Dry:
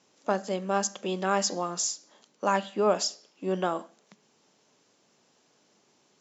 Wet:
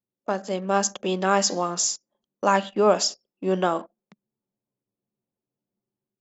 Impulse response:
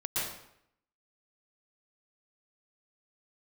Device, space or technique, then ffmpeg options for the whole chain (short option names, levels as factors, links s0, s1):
voice memo with heavy noise removal: -af "anlmdn=0.0251,dynaudnorm=f=380:g=3:m=1.88"